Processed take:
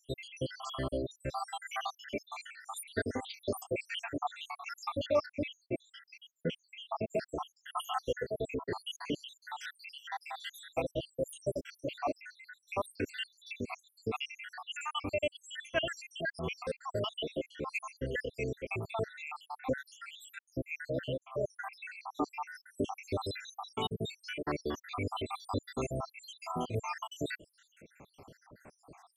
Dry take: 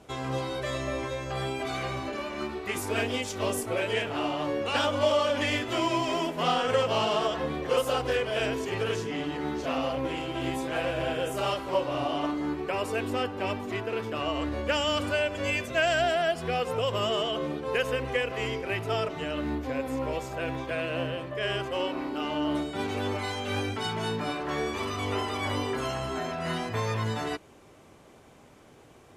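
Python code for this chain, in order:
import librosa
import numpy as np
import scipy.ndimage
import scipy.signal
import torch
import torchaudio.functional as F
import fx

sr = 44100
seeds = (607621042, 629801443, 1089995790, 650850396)

y = fx.spec_dropout(x, sr, seeds[0], share_pct=84)
y = fx.lowpass(y, sr, hz=1000.0, slope=6, at=(5.26, 7.06))
y = fx.rider(y, sr, range_db=3, speed_s=0.5)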